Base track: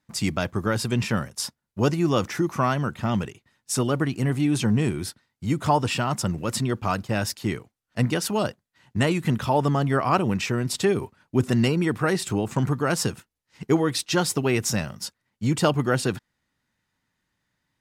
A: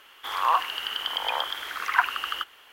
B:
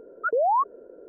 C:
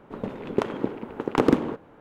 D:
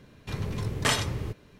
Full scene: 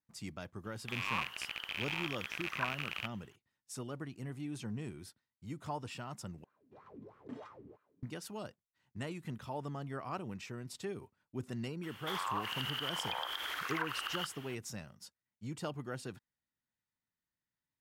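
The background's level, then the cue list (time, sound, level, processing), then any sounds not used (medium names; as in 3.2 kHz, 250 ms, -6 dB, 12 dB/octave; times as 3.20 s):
base track -19.5 dB
0.64 s: add A -16.5 dB + rattle on loud lows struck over -57 dBFS, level -8 dBFS
6.44 s: replace with D -6 dB + wah-wah 3.1 Hz 250–1300 Hz, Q 5.9
11.83 s: add A -2 dB + compression 4:1, threshold -33 dBFS
not used: B, C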